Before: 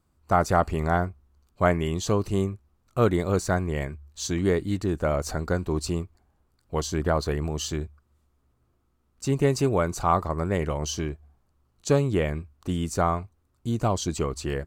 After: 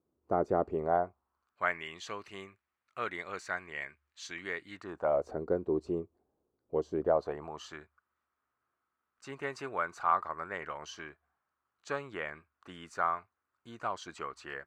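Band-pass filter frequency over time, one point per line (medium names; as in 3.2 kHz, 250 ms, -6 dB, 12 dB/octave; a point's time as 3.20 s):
band-pass filter, Q 2
0.69 s 400 Hz
1.72 s 2 kHz
4.67 s 2 kHz
5.33 s 420 Hz
6.91 s 420 Hz
7.79 s 1.5 kHz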